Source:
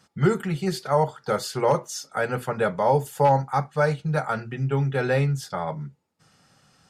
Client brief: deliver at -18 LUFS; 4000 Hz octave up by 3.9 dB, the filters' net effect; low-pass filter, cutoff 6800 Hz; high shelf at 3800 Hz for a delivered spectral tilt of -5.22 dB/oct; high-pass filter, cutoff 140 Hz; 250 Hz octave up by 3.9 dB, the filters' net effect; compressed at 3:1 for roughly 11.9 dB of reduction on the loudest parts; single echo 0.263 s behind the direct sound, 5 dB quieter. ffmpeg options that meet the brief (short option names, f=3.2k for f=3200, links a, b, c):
-af "highpass=140,lowpass=6.8k,equalizer=f=250:t=o:g=8,highshelf=f=3.8k:g=-3.5,equalizer=f=4k:t=o:g=8,acompressor=threshold=-28dB:ratio=3,aecho=1:1:263:0.562,volume=12dB"